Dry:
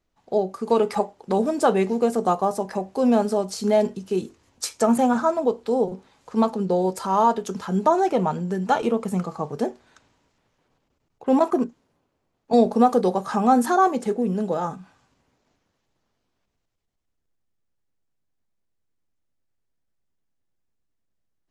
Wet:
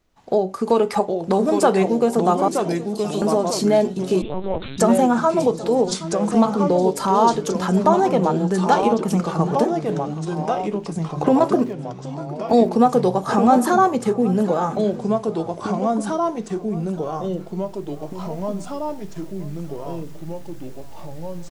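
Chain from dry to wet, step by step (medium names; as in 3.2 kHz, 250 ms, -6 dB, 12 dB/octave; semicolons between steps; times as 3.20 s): recorder AGC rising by 7.9 dB/s; 2.48–3.22 s: steep high-pass 2.9 kHz; in parallel at +3 dB: compression, threshold -30 dBFS, peak gain reduction 17.5 dB; 11.59–12.69 s: on the sum: small samples zeroed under -43 dBFS; on a send: delay 773 ms -18.5 dB; on the sum: ever faster or slower copies 724 ms, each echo -2 st, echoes 3, each echo -6 dB; 4.22–4.78 s: LPC vocoder at 8 kHz pitch kept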